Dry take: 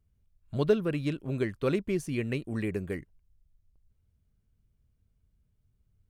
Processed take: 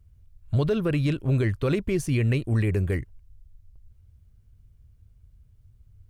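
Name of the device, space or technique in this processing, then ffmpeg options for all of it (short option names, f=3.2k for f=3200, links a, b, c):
car stereo with a boomy subwoofer: -af "lowshelf=f=140:t=q:w=1.5:g=7.5,alimiter=limit=-23.5dB:level=0:latency=1:release=38,volume=7.5dB"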